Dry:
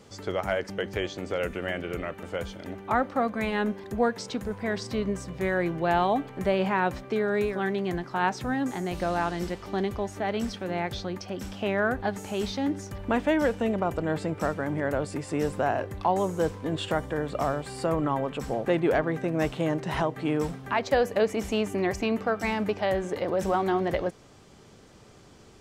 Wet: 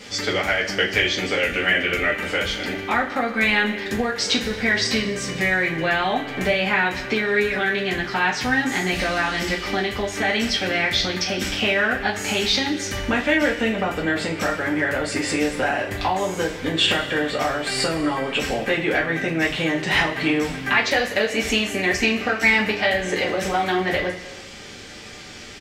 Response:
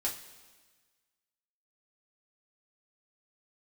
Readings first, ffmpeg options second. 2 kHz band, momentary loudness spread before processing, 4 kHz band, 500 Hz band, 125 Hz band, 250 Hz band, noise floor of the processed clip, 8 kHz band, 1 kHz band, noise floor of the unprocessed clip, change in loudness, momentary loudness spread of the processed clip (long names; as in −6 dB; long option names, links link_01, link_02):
+14.0 dB, 7 LU, +16.5 dB, +3.0 dB, +2.0 dB, +4.0 dB, −38 dBFS, +13.5 dB, +3.5 dB, −52 dBFS, +7.0 dB, 5 LU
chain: -filter_complex "[0:a]acompressor=threshold=-31dB:ratio=4,firequalizer=gain_entry='entry(1000,0);entry(2000,14);entry(9000,4)':delay=0.05:min_phase=1[link_01];[1:a]atrim=start_sample=2205[link_02];[link_01][link_02]afir=irnorm=-1:irlink=0,volume=6.5dB"